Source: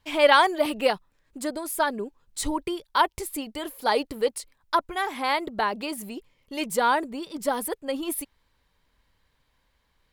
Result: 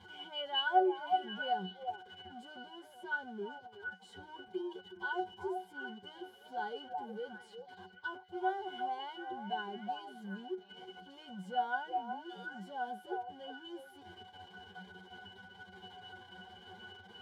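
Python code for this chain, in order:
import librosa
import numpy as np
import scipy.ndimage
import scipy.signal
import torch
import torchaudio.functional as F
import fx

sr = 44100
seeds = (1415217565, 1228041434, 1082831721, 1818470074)

p1 = x + 0.5 * 10.0 ** (-24.5 / 20.0) * np.sign(x)
p2 = scipy.signal.sosfilt(scipy.signal.butter(2, 200.0, 'highpass', fs=sr, output='sos'), p1)
p3 = fx.low_shelf(p2, sr, hz=420.0, db=-5.5)
p4 = fx.notch(p3, sr, hz=1800.0, q=5.3)
p5 = p4 + fx.echo_stepped(p4, sr, ms=216, hz=700.0, octaves=1.4, feedback_pct=70, wet_db=-3, dry=0)
p6 = fx.stretch_vocoder(p5, sr, factor=1.7)
p7 = fx.octave_resonator(p6, sr, note='F#', decay_s=0.19)
y = p7 * librosa.db_to_amplitude(1.0)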